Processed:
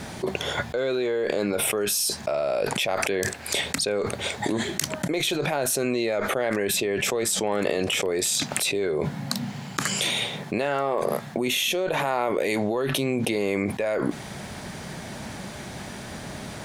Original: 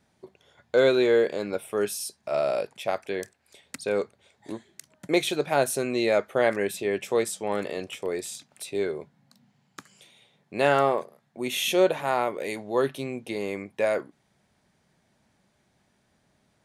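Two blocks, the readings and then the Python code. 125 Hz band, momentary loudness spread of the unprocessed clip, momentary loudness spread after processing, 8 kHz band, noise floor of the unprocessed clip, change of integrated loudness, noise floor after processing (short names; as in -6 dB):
+7.5 dB, 16 LU, 13 LU, +10.0 dB, -69 dBFS, +1.0 dB, -38 dBFS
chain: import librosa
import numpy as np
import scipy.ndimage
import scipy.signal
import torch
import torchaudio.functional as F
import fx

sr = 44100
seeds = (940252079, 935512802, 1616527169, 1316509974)

y = fx.cheby_harmonics(x, sr, harmonics=(6,), levels_db=(-36,), full_scale_db=-7.5)
y = fx.dynamic_eq(y, sr, hz=9600.0, q=5.8, threshold_db=-60.0, ratio=4.0, max_db=-6)
y = fx.env_flatten(y, sr, amount_pct=100)
y = y * 10.0 ** (-8.5 / 20.0)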